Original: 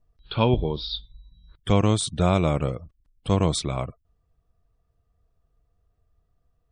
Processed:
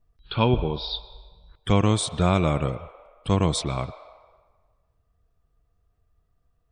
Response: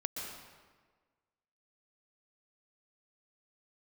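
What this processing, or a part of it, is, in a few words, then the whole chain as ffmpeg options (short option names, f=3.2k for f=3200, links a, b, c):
filtered reverb send: -filter_complex "[0:a]asplit=2[a][b];[b]highpass=f=560:w=0.5412,highpass=f=560:w=1.3066,lowpass=3.2k[c];[1:a]atrim=start_sample=2205[d];[c][d]afir=irnorm=-1:irlink=0,volume=-10dB[e];[a][e]amix=inputs=2:normalize=0"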